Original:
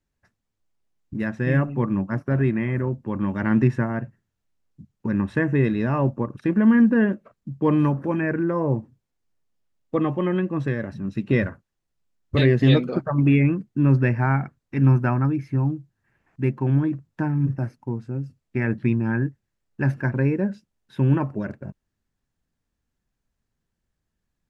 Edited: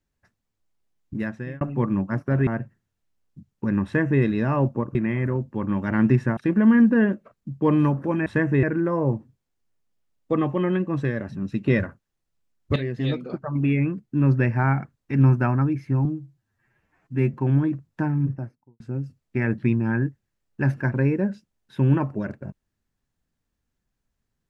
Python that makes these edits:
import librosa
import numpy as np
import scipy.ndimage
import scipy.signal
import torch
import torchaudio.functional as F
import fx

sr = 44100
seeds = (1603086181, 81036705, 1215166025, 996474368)

y = fx.studio_fade_out(x, sr, start_s=17.25, length_s=0.75)
y = fx.edit(y, sr, fx.fade_out_span(start_s=1.15, length_s=0.46),
    fx.move(start_s=2.47, length_s=1.42, to_s=6.37),
    fx.duplicate(start_s=5.27, length_s=0.37, to_s=8.26),
    fx.fade_in_from(start_s=12.39, length_s=1.91, floor_db=-12.5),
    fx.stretch_span(start_s=15.68, length_s=0.86, factor=1.5), tone=tone)